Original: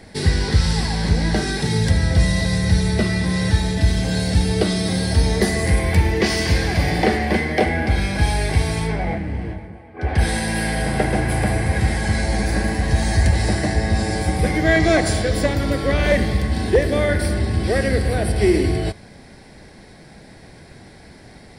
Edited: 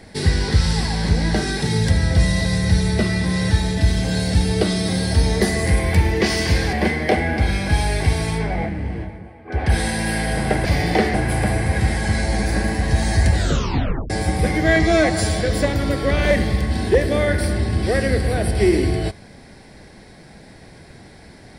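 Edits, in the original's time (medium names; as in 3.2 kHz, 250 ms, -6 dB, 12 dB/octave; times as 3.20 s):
6.73–7.22 s: move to 11.14 s
13.34 s: tape stop 0.76 s
14.83–15.21 s: stretch 1.5×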